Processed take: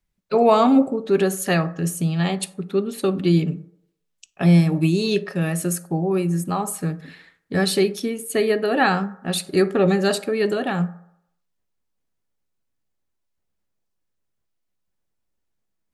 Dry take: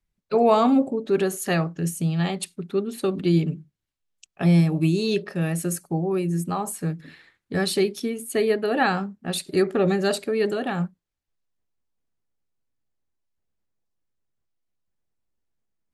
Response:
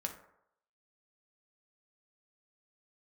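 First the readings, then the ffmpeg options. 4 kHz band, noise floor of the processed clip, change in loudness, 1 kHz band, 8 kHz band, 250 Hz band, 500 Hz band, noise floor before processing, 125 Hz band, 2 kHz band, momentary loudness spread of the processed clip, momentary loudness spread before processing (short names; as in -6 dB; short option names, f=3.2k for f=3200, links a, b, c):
+3.5 dB, -75 dBFS, +3.0 dB, +3.0 dB, +3.5 dB, +3.0 dB, +2.5 dB, -82 dBFS, +2.5 dB, +3.5 dB, 10 LU, 11 LU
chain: -filter_complex "[0:a]asplit=2[a][b];[1:a]atrim=start_sample=2205,lowshelf=f=200:g=-7.5[c];[b][c]afir=irnorm=-1:irlink=0,volume=-5dB[d];[a][d]amix=inputs=2:normalize=0"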